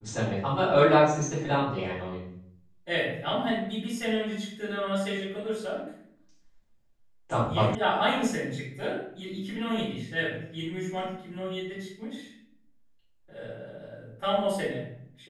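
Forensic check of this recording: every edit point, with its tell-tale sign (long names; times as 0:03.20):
0:07.75: cut off before it has died away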